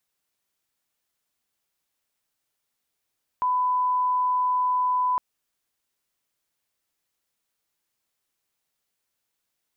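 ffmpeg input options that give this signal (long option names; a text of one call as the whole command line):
ffmpeg -f lavfi -i "sine=frequency=1000:duration=1.76:sample_rate=44100,volume=-1.94dB" out.wav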